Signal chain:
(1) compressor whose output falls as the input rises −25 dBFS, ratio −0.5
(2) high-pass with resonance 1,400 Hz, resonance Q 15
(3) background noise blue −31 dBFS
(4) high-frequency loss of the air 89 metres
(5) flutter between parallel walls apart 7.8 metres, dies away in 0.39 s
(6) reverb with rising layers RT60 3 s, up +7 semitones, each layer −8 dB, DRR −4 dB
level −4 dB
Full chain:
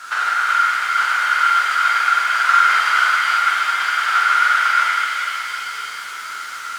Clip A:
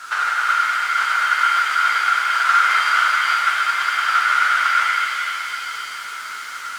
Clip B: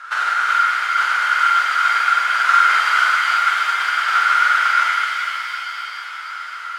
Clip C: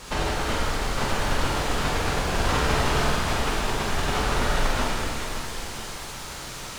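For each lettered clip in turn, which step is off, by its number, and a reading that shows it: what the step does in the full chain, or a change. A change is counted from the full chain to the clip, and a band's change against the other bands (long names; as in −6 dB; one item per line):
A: 5, change in integrated loudness −1.5 LU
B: 3, 8 kHz band −3.0 dB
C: 2, 500 Hz band +23.0 dB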